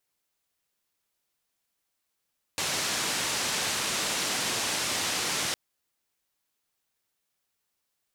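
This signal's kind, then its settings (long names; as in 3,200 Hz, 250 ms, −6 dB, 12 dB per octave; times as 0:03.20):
band-limited noise 99–7,300 Hz, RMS −29.5 dBFS 2.96 s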